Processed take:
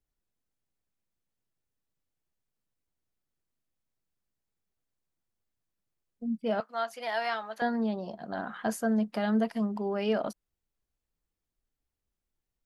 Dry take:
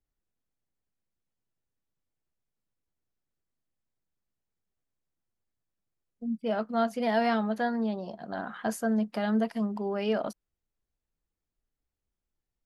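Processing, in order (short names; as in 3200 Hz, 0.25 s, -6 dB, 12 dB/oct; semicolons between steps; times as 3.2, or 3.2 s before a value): 6.6–7.62 HPF 840 Hz 12 dB/oct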